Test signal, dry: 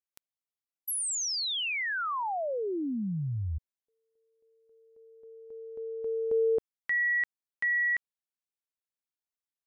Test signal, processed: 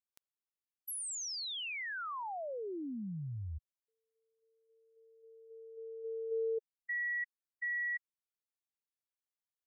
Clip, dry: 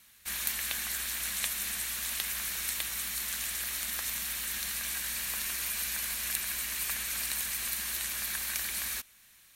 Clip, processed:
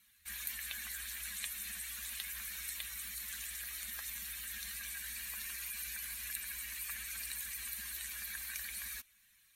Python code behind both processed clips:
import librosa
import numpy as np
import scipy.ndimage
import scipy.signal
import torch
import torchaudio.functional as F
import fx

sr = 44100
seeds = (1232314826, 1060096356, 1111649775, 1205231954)

y = fx.spec_expand(x, sr, power=1.8)
y = F.gain(torch.from_numpy(y), -8.5).numpy()